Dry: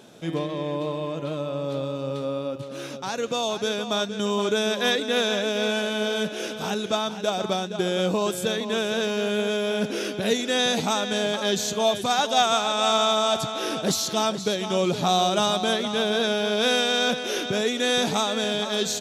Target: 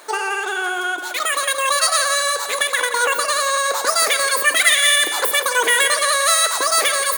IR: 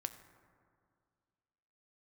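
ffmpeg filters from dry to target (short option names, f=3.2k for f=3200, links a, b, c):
-filter_complex "[0:a]crystalizer=i=7.5:c=0,asplit=2[a][b];[1:a]atrim=start_sample=2205,lowpass=2.5k[c];[b][c]afir=irnorm=-1:irlink=0,volume=10dB[d];[a][d]amix=inputs=2:normalize=0,asetrate=116865,aresample=44100,volume=-6.5dB"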